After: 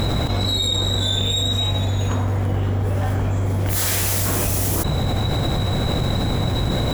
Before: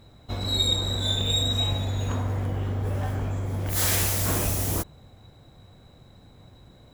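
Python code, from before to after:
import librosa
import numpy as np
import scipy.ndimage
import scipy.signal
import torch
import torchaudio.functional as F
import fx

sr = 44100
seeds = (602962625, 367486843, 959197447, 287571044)

y = fx.env_flatten(x, sr, amount_pct=100)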